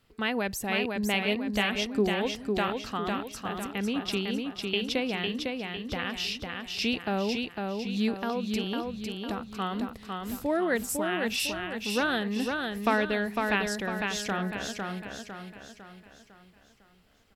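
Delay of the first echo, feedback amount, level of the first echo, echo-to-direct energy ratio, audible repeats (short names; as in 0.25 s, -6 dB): 0.503 s, 45%, -4.0 dB, -3.0 dB, 5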